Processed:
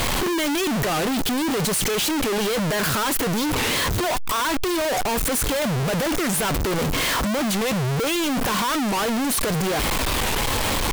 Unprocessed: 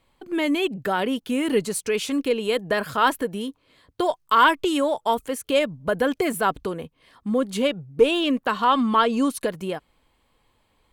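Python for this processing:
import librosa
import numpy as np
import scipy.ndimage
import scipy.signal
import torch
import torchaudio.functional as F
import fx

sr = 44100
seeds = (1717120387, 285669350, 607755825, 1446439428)

y = np.sign(x) * np.sqrt(np.mean(np.square(x)))
y = fx.record_warp(y, sr, rpm=45.0, depth_cents=250.0)
y = F.gain(torch.from_numpy(y), 1.5).numpy()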